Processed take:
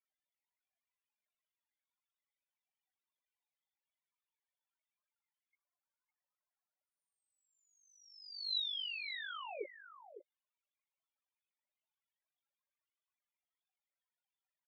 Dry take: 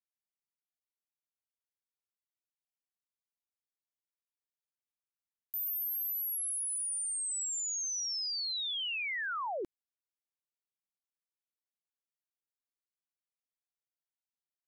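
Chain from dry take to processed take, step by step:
treble cut that deepens with the level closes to 2,500 Hz
Chebyshev band-pass filter 540–3,700 Hz, order 4
compressor whose output falls as the input rises −49 dBFS, ratio −1
spectral peaks only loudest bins 4
amplitude modulation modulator 49 Hz, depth 55%
on a send: single-tap delay 556 ms −11.5 dB
on the sum: level +10.5 dB

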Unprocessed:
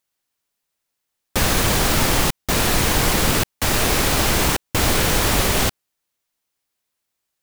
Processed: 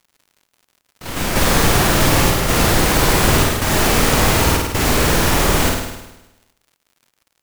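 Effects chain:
flutter between parallel walls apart 8.9 metres, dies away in 1 s
in parallel at −7.5 dB: sample-rate reduction 5,300 Hz
on the sum: delay with pitch and tempo change per echo 147 ms, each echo +5 semitones, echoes 3, each echo −6 dB
surface crackle 110 per second −39 dBFS
level −2 dB

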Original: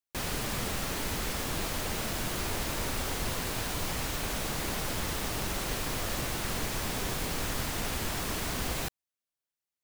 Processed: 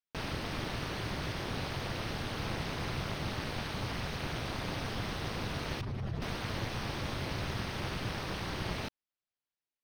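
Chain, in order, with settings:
0:05.81–0:06.22: expanding power law on the bin magnitudes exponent 1.9
Savitzky-Golay smoothing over 15 samples
ring modulation 110 Hz

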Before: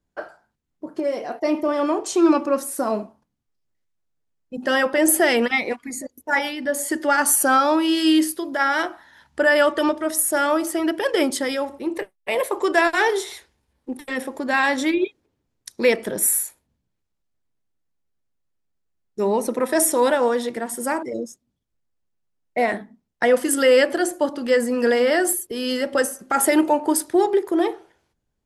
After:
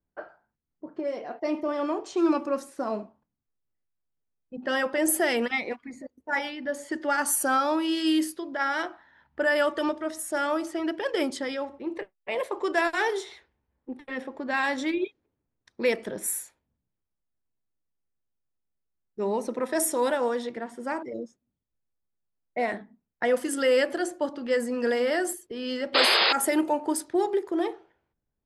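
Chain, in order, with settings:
sound drawn into the spectrogram noise, 0:25.94–0:26.33, 330–5,100 Hz −14 dBFS
low-pass that shuts in the quiet parts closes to 1,900 Hz, open at −13.5 dBFS
level −7 dB

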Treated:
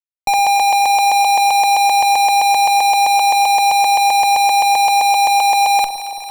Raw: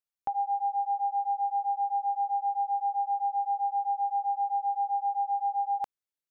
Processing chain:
in parallel at +2 dB: compressor whose output falls as the input rises −39 dBFS, ratio −1
on the sum: fuzz pedal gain 59 dB, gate −54 dBFS
harmonic generator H 4 −20 dB, 8 −30 dB, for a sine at −11 dBFS
delay that swaps between a low-pass and a high-pass 112 ms, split 970 Hz, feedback 85%, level −11 dB

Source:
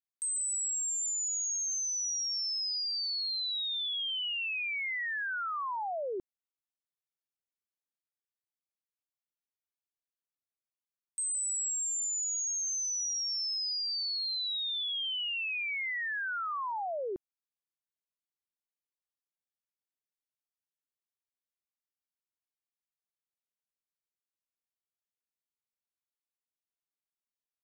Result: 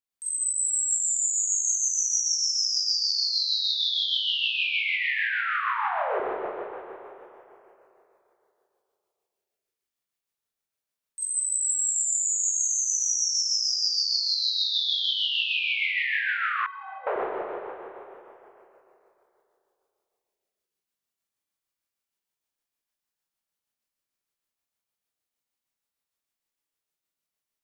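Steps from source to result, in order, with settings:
four-comb reverb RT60 3.1 s, combs from 28 ms, DRR −8.5 dB
amplitude tremolo 6.5 Hz, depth 30%
0:16.66–0:17.07: stiff-string resonator 230 Hz, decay 0.27 s, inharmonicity 0.03

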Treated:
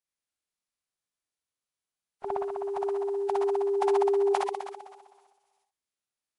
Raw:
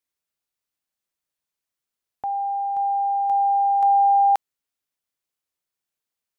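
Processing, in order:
flutter between parallel walls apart 11 metres, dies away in 1.4 s
phase-vocoder pitch shift with formants kept −12 semitones
level −7.5 dB

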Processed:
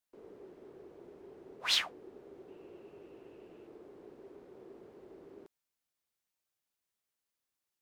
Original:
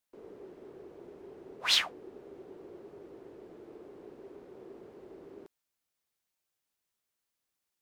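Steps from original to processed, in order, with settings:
0:02.48–0:03.67: parametric band 2,700 Hz +13.5 dB 0.25 octaves
level −3.5 dB

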